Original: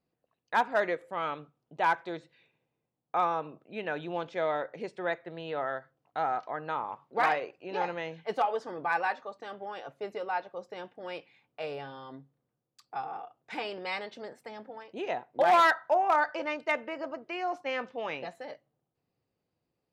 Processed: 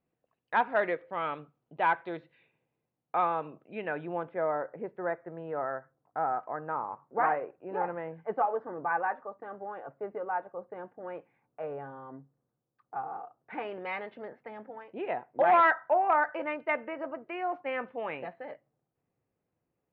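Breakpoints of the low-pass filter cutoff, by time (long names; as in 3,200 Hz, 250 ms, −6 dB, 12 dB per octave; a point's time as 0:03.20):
low-pass filter 24 dB per octave
0:03.60 3,100 Hz
0:04.44 1,600 Hz
0:13.17 1,600 Hz
0:13.82 2,400 Hz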